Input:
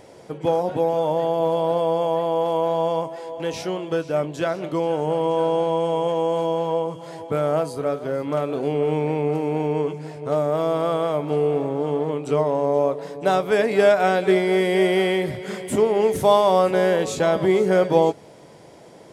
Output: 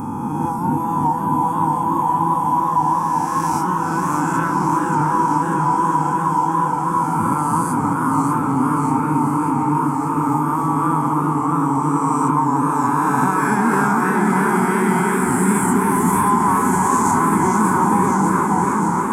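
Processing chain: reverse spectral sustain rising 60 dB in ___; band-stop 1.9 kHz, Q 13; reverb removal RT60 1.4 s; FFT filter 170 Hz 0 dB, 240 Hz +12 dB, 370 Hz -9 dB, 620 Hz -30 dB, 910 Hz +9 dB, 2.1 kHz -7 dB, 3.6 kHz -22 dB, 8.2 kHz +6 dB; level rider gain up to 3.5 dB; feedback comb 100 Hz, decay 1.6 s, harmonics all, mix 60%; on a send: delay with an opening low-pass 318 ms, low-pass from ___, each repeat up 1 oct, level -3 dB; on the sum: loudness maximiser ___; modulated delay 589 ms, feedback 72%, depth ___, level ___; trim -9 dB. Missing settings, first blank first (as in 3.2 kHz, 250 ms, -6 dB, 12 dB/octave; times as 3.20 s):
2.88 s, 750 Hz, +17.5 dB, 160 cents, -4.5 dB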